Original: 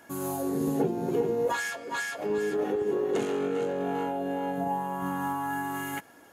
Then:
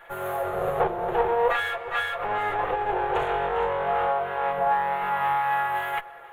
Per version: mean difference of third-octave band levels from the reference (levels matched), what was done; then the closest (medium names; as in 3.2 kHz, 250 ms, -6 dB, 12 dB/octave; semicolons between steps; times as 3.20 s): 9.0 dB: comb filter that takes the minimum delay 5.8 ms; FFT filter 110 Hz 0 dB, 280 Hz -17 dB, 420 Hz +6 dB, 1.3 kHz +11 dB, 3.5 kHz +3 dB, 5.1 kHz -18 dB, 8.7 kHz -11 dB, 13 kHz -5 dB; tape echo 300 ms, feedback 79%, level -22 dB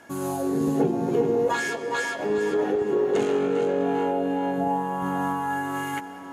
2.5 dB: Bessel low-pass 8.5 kHz, order 2; on a send: band-passed feedback delay 541 ms, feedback 47%, band-pass 590 Hz, level -10 dB; on the sum: algorithmic reverb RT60 4.5 s, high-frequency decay 0.7×, pre-delay 115 ms, DRR 13 dB; trim +4 dB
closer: second